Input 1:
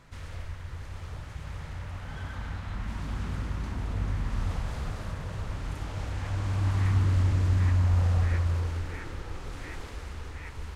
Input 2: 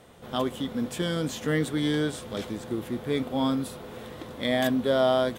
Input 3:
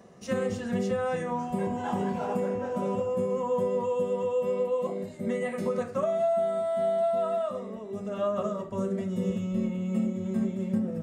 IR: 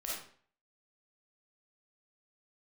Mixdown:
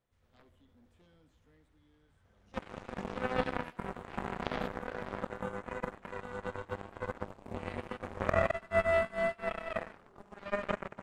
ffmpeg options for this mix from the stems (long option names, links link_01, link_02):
-filter_complex "[0:a]volume=-9dB,asplit=2[link_01][link_02];[link_02]volume=-3.5dB[link_03];[1:a]volume=2dB,afade=type=out:start_time=0.94:duration=0.79:silence=0.316228,afade=type=in:start_time=2.87:duration=0.51:silence=0.223872,afade=type=out:start_time=4.56:duration=0.27:silence=0.354813,asplit=2[link_04][link_05];[link_05]volume=-12.5dB[link_06];[2:a]adelay=2250,volume=1.5dB,asplit=3[link_07][link_08][link_09];[link_08]volume=-5dB[link_10];[link_09]volume=-5dB[link_11];[link_01][link_07]amix=inputs=2:normalize=0,acompressor=threshold=-28dB:ratio=6,volume=0dB[link_12];[3:a]atrim=start_sample=2205[link_13];[link_06][link_10]amix=inputs=2:normalize=0[link_14];[link_14][link_13]afir=irnorm=-1:irlink=0[link_15];[link_03][link_11]amix=inputs=2:normalize=0,aecho=0:1:216:1[link_16];[link_04][link_12][link_15][link_16]amix=inputs=4:normalize=0,acrossover=split=3600[link_17][link_18];[link_18]acompressor=threshold=-58dB:ratio=4:attack=1:release=60[link_19];[link_17][link_19]amix=inputs=2:normalize=0,aeval=exprs='0.211*(cos(1*acos(clip(val(0)/0.211,-1,1)))-cos(1*PI/2))+0.0211*(cos(2*acos(clip(val(0)/0.211,-1,1)))-cos(2*PI/2))+0.075*(cos(3*acos(clip(val(0)/0.211,-1,1)))-cos(3*PI/2))+0.00668*(cos(4*acos(clip(val(0)/0.211,-1,1)))-cos(4*PI/2))':channel_layout=same"